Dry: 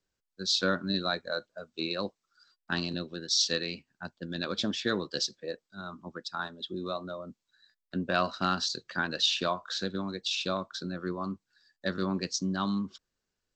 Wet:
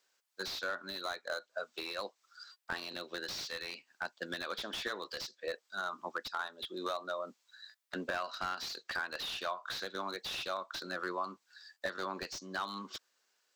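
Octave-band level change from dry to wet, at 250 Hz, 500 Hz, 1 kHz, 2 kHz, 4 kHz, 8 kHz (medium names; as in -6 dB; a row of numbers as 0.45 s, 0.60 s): -14.5 dB, -6.0 dB, -3.5 dB, -3.0 dB, -9.0 dB, -11.5 dB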